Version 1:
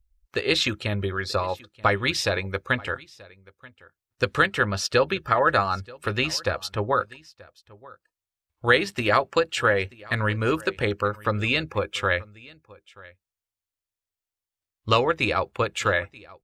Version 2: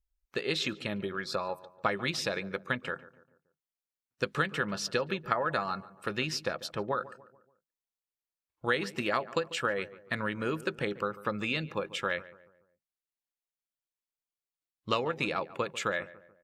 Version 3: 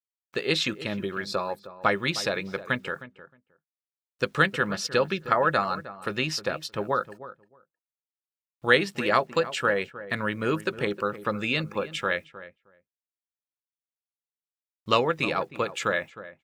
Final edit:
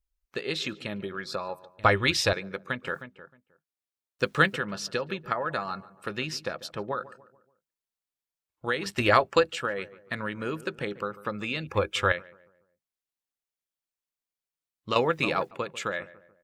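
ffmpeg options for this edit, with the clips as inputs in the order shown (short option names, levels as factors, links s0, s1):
-filter_complex "[0:a]asplit=3[s0][s1][s2];[2:a]asplit=2[s3][s4];[1:a]asplit=6[s5][s6][s7][s8][s9][s10];[s5]atrim=end=1.792[s11];[s0]atrim=start=1.788:end=2.332[s12];[s6]atrim=start=2.328:end=2.872[s13];[s3]atrim=start=2.868:end=4.562[s14];[s7]atrim=start=4.558:end=8.862[s15];[s1]atrim=start=8.858:end=9.532[s16];[s8]atrim=start=9.528:end=11.672[s17];[s2]atrim=start=11.668:end=12.122[s18];[s9]atrim=start=12.118:end=14.962[s19];[s4]atrim=start=14.958:end=15.512[s20];[s10]atrim=start=15.508[s21];[s11][s12]acrossfade=d=0.004:c1=hsin:c2=hsin[s22];[s22][s13]acrossfade=d=0.004:c1=hsin:c2=hsin[s23];[s23][s14]acrossfade=d=0.004:c1=hsin:c2=hsin[s24];[s24][s15]acrossfade=d=0.004:c1=hsin:c2=hsin[s25];[s25][s16]acrossfade=d=0.004:c1=hsin:c2=hsin[s26];[s26][s17]acrossfade=d=0.004:c1=hsin:c2=hsin[s27];[s27][s18]acrossfade=d=0.004:c1=hsin:c2=hsin[s28];[s28][s19]acrossfade=d=0.004:c1=hsin:c2=hsin[s29];[s29][s20]acrossfade=d=0.004:c1=hsin:c2=hsin[s30];[s30][s21]acrossfade=d=0.004:c1=hsin:c2=hsin"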